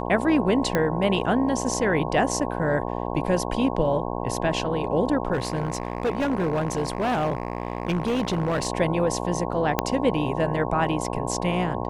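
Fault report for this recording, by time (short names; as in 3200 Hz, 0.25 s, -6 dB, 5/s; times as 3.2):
buzz 60 Hz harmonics 18 -29 dBFS
0.75 pop -9 dBFS
5.33–8.67 clipped -20 dBFS
9.79 pop -5 dBFS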